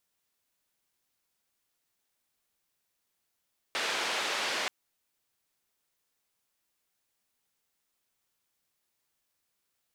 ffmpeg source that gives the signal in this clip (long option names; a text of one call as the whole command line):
ffmpeg -f lavfi -i "anoisesrc=color=white:duration=0.93:sample_rate=44100:seed=1,highpass=frequency=390,lowpass=frequency=3600,volume=-19.2dB" out.wav